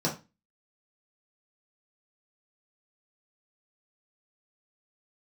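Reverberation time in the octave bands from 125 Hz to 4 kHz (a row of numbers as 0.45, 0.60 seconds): 0.35, 0.35, 0.25, 0.25, 0.25, 0.25 seconds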